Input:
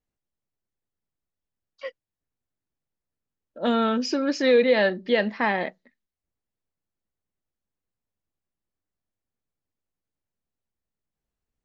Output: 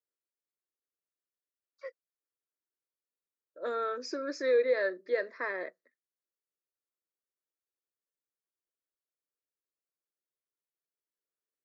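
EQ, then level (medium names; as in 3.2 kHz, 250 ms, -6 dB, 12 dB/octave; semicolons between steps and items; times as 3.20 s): high-pass 230 Hz 24 dB/octave; static phaser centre 810 Hz, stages 6; -7.0 dB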